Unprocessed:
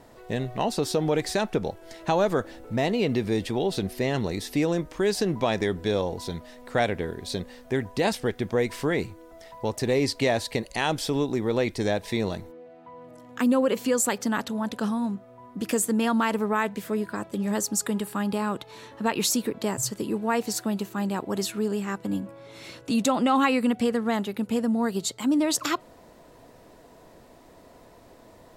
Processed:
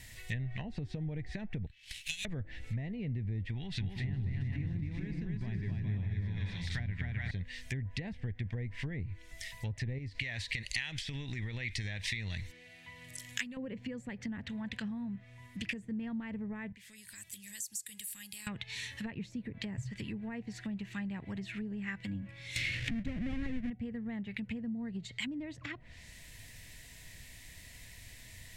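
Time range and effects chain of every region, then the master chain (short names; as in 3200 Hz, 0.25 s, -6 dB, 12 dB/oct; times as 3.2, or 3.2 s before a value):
1.66–2.25 steep high-pass 2400 Hz 72 dB/oct + running maximum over 5 samples
3.54–7.31 bell 520 Hz -12 dB 0.84 oct + bouncing-ball echo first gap 0.26 s, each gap 0.6×, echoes 5, each echo -2 dB
9.98–13.57 high shelf 2700 Hz +10 dB + compressor 10:1, threshold -25 dBFS
16.72–18.47 pre-emphasis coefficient 0.8 + compressor 4:1, threshold -47 dBFS
22.56–23.7 half-waves squared off + bell 910 Hz -8 dB 0.67 oct + upward compressor, threshold -21 dBFS
whole clip: treble ducked by the level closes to 560 Hz, closed at -22.5 dBFS; EQ curve 100 Hz 0 dB, 380 Hz -26 dB, 1300 Hz -21 dB, 1900 Hz +4 dB, 4800 Hz 0 dB, 7600 Hz +4 dB; compressor 2:1, threshold -45 dBFS; gain +7 dB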